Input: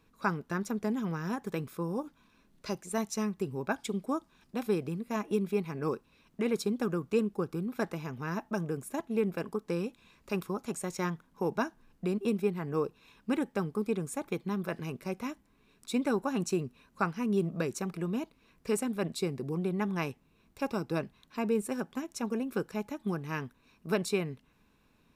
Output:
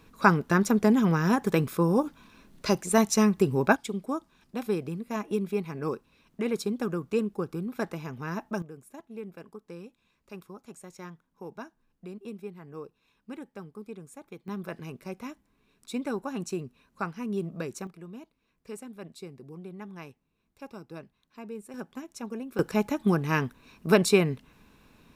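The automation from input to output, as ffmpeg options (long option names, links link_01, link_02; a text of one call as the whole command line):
ffmpeg -i in.wav -af "asetnsamples=nb_out_samples=441:pad=0,asendcmd='3.76 volume volume 1dB;8.62 volume volume -10.5dB;14.48 volume volume -2.5dB;17.87 volume volume -10.5dB;21.74 volume volume -3.5dB;22.59 volume volume 9.5dB',volume=10.5dB" out.wav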